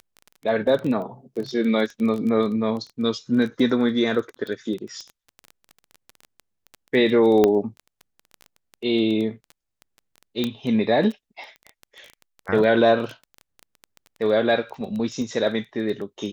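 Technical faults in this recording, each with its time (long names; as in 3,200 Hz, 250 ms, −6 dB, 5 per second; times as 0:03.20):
surface crackle 14 per second −28 dBFS
0:07.44: click −6 dBFS
0:10.44: click −11 dBFS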